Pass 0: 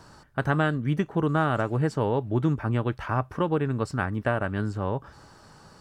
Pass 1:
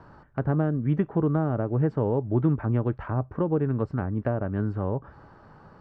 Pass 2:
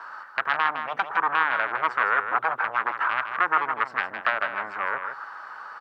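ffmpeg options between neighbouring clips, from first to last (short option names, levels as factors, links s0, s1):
-filter_complex "[0:a]lowpass=1600,acrossover=split=650[s0][s1];[s1]acompressor=threshold=0.01:ratio=6[s2];[s0][s2]amix=inputs=2:normalize=0,volume=1.19"
-af "aeval=exprs='0.266*sin(PI/2*3.55*val(0)/0.266)':c=same,highpass=f=1300:t=q:w=2.1,aecho=1:1:159:0.398,volume=0.75"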